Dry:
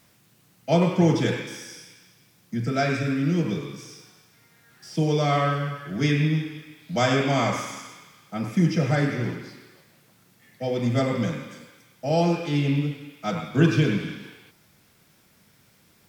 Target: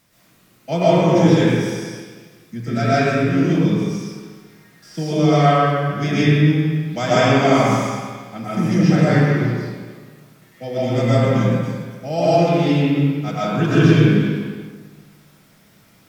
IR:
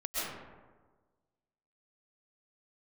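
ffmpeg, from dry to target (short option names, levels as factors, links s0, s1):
-filter_complex "[1:a]atrim=start_sample=2205[s0];[0:a][s0]afir=irnorm=-1:irlink=0,volume=1.19"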